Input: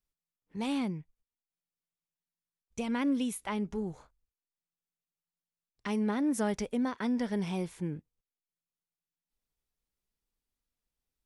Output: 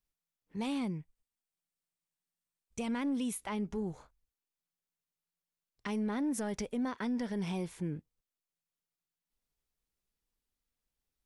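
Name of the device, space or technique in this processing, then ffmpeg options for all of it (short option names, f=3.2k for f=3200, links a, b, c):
soft clipper into limiter: -filter_complex "[0:a]asettb=1/sr,asplit=3[a][b][c];[a]atrim=end=0.774[d];[b]atrim=start=0.77:end=3.31,asetpts=PTS-STARTPTS,afade=t=in:d=0.004:c=qsin,afade=t=out:st=2.536:d=0.004:c=qsin,equalizer=f=8.5k:t=o:w=0.22:g=6[e];[c]atrim=start=3.306[f];[d][e]acrossfade=d=0.004:c1=hsin:c2=qsin[g];[g][f]acrossfade=d=0.004:c1=qsin:c2=hsin,asoftclip=type=tanh:threshold=-22dB,alimiter=level_in=4dB:limit=-24dB:level=0:latency=1:release=96,volume=-4dB"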